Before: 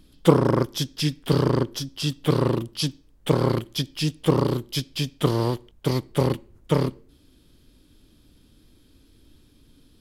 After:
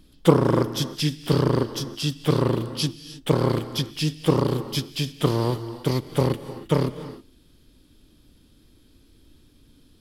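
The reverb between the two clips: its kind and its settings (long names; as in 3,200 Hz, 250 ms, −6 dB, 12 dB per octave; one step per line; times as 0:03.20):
reverb whose tail is shaped and stops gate 340 ms rising, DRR 12 dB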